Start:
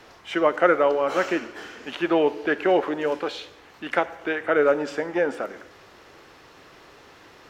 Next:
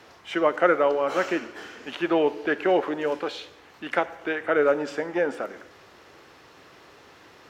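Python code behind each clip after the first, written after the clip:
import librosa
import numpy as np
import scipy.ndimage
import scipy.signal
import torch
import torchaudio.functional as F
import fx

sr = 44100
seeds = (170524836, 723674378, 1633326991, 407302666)

y = scipy.signal.sosfilt(scipy.signal.butter(2, 55.0, 'highpass', fs=sr, output='sos'), x)
y = y * 10.0 ** (-1.5 / 20.0)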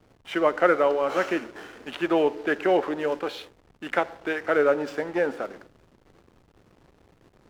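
y = fx.backlash(x, sr, play_db=-40.0)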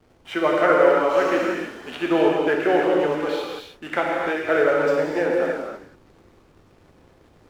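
y = fx.rev_gated(x, sr, seeds[0], gate_ms=340, shape='flat', drr_db=-2.5)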